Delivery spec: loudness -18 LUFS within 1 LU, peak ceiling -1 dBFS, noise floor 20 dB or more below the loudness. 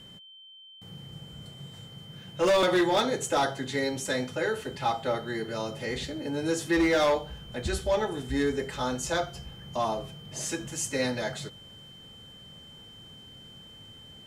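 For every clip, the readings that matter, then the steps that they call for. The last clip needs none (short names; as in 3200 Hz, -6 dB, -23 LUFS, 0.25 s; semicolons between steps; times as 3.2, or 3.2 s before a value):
clipped 0.9%; flat tops at -19.0 dBFS; steady tone 3100 Hz; tone level -48 dBFS; loudness -29.0 LUFS; peak -19.0 dBFS; loudness target -18.0 LUFS
-> clip repair -19 dBFS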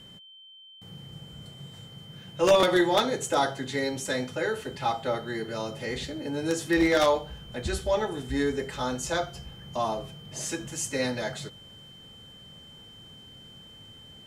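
clipped 0.0%; steady tone 3100 Hz; tone level -48 dBFS
-> notch 3100 Hz, Q 30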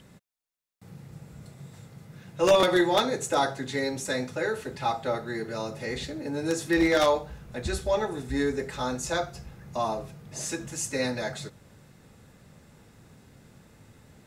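steady tone none; loudness -28.0 LUFS; peak -9.5 dBFS; loudness target -18.0 LUFS
-> gain +10 dB; limiter -1 dBFS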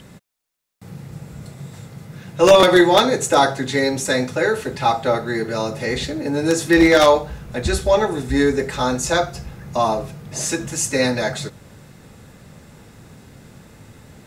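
loudness -18.0 LUFS; peak -1.0 dBFS; noise floor -47 dBFS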